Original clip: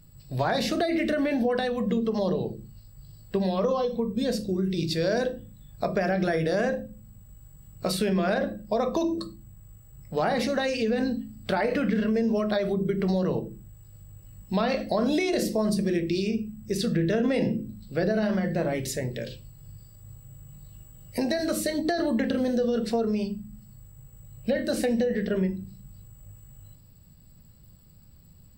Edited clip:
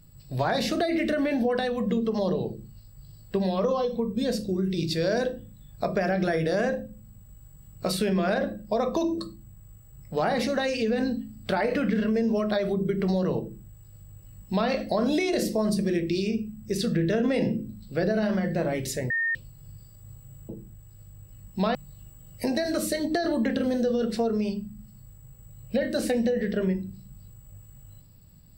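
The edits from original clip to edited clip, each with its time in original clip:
13.43–14.69 s: copy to 20.49 s
19.10–19.35 s: bleep 1.83 kHz -23 dBFS

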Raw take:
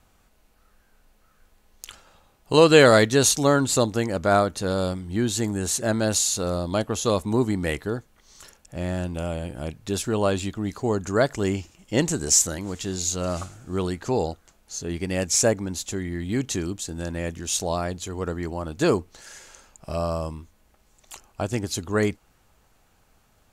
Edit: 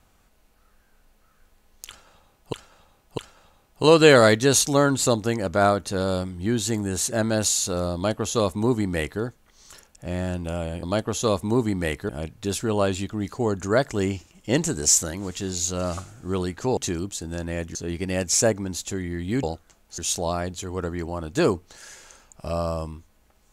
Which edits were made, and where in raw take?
1.88–2.53 s: loop, 3 plays
6.65–7.91 s: copy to 9.53 s
14.21–14.76 s: swap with 16.44–17.42 s

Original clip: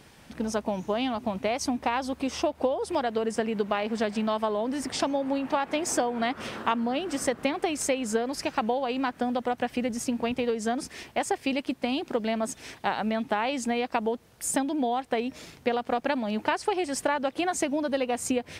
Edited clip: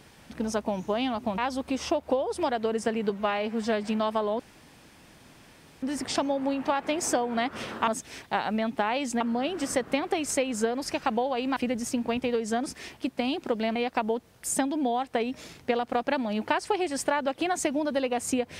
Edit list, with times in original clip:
1.38–1.90 s: delete
3.62–4.11 s: stretch 1.5×
4.67 s: insert room tone 1.43 s
9.08–9.71 s: delete
11.15–11.65 s: delete
12.40–13.73 s: move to 6.72 s

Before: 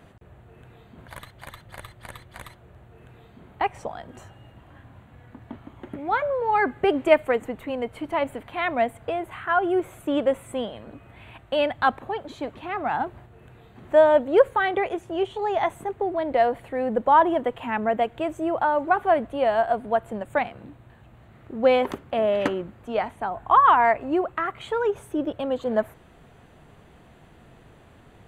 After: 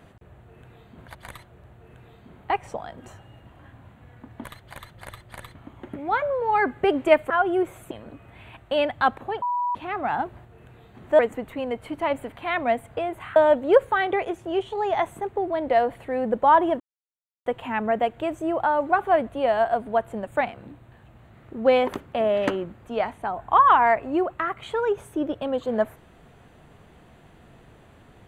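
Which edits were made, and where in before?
1.15–2.26 s: move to 5.55 s
7.30–9.47 s: move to 14.00 s
10.08–10.72 s: delete
12.23–12.56 s: bleep 977 Hz -22 dBFS
17.44 s: insert silence 0.66 s

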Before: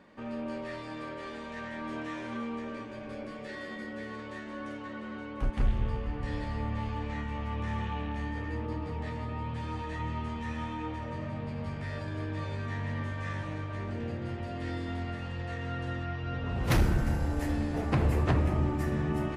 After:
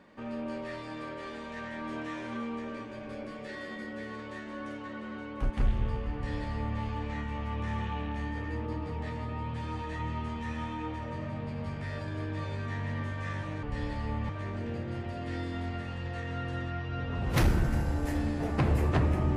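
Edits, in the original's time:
6.14–6.80 s: copy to 13.63 s

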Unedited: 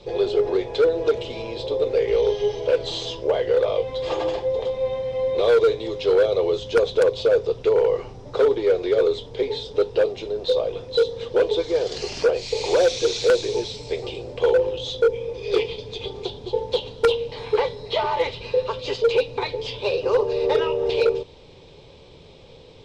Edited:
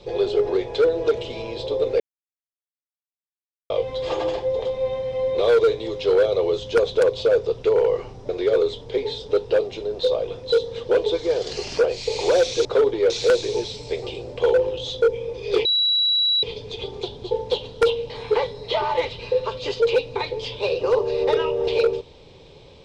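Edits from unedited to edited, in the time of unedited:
2.00–3.70 s: mute
8.29–8.74 s: move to 13.10 s
15.65 s: add tone 3.91 kHz -16.5 dBFS 0.78 s

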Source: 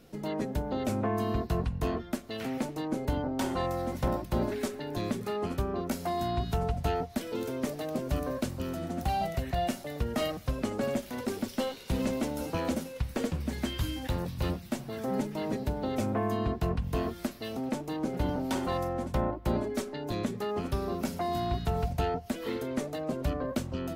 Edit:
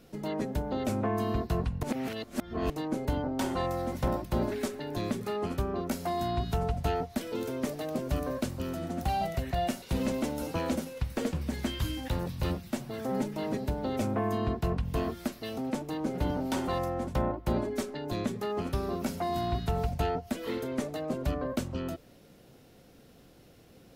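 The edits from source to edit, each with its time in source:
1.83–2.70 s: reverse
9.82–11.81 s: delete

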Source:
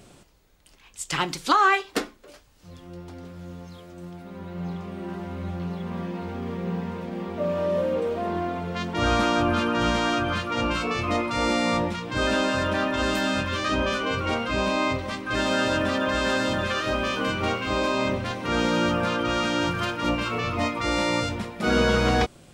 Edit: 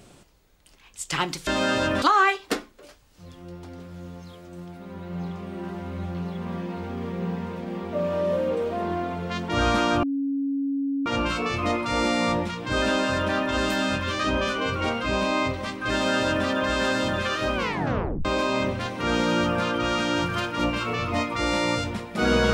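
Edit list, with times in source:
9.48–10.51 s: bleep 277 Hz -23 dBFS
15.37–15.92 s: copy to 1.47 s
17.00 s: tape stop 0.70 s

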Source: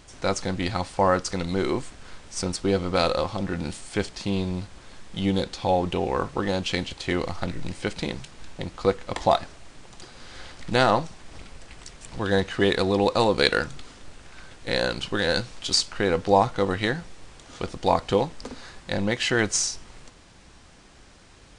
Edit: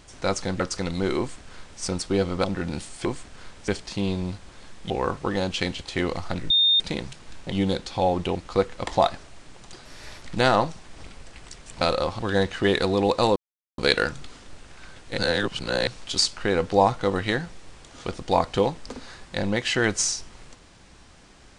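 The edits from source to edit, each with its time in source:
0.60–1.14 s: delete
1.72–2.35 s: copy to 3.97 s
2.98–3.36 s: move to 12.16 s
5.19–6.02 s: move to 8.64 s
7.62–7.92 s: bleep 3.65 kHz -15.5 dBFS
10.14–10.57 s: speed 116%
13.33 s: insert silence 0.42 s
14.73–15.42 s: reverse

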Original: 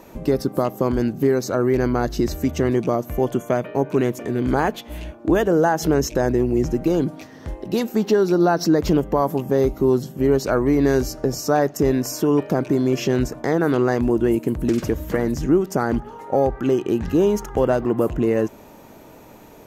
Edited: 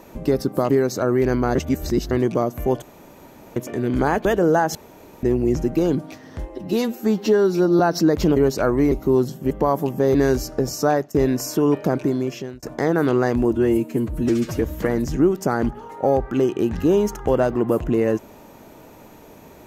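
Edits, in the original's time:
0.70–1.22 s: delete
2.07–2.63 s: reverse
3.34–4.08 s: room tone
4.77–5.34 s: delete
5.84–6.32 s: room tone
7.58–8.45 s: stretch 1.5×
9.02–9.66 s: swap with 10.25–10.80 s
11.50–11.80 s: fade out equal-power, to -19 dB
12.63–13.28 s: fade out
14.19–14.91 s: stretch 1.5×

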